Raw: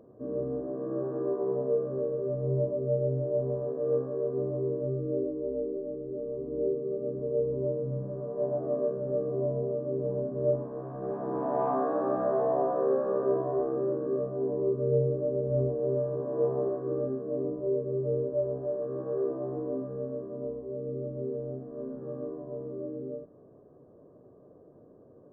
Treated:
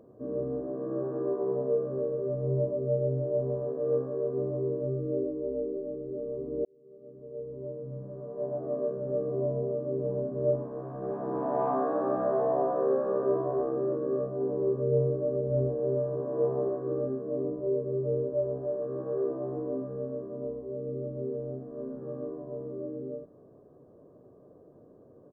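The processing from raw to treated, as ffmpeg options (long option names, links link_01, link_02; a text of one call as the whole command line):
ffmpeg -i in.wav -filter_complex "[0:a]asplit=2[link_01][link_02];[link_02]afade=type=in:start_time=12.72:duration=0.01,afade=type=out:start_time=13.14:duration=0.01,aecho=0:1:560|1120|1680|2240|2800|3360|3920|4480|5040:0.223872|0.15671|0.109697|0.0767881|0.0537517|0.0376262|0.0263383|0.0184368|0.0129058[link_03];[link_01][link_03]amix=inputs=2:normalize=0,asplit=2[link_04][link_05];[link_04]atrim=end=6.65,asetpts=PTS-STARTPTS,afade=type=out:start_time=6.646:duration=0.004:curve=hsin[link_06];[link_05]atrim=start=6.65,asetpts=PTS-STARTPTS,afade=type=in:duration=2.66[link_07];[link_06][link_07]concat=n=2:v=0:a=1" out.wav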